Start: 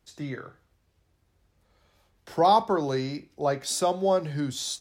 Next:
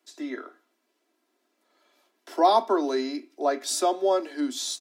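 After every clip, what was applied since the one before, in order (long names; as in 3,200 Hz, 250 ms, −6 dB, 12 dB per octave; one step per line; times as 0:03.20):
Butterworth high-pass 230 Hz 72 dB per octave
comb filter 3 ms, depth 55%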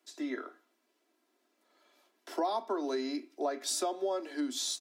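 downward compressor 5 to 1, threshold −28 dBFS, peak gain reduction 12.5 dB
level −2 dB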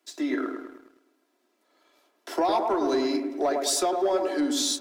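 delay with a low-pass on its return 105 ms, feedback 52%, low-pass 1,300 Hz, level −4 dB
leveller curve on the samples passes 1
level +4.5 dB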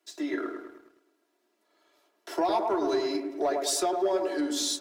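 notch comb filter 260 Hz
level −1.5 dB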